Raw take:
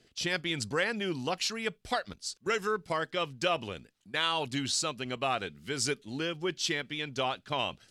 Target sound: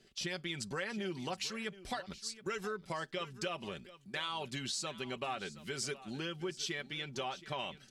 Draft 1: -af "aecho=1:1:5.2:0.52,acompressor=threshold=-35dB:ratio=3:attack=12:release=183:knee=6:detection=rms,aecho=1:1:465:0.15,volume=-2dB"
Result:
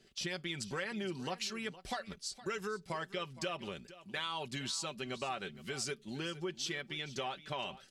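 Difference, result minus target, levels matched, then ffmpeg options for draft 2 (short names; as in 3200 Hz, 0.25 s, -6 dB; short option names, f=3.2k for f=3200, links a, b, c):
echo 0.257 s early
-af "aecho=1:1:5.2:0.52,acompressor=threshold=-35dB:ratio=3:attack=12:release=183:knee=6:detection=rms,aecho=1:1:722:0.15,volume=-2dB"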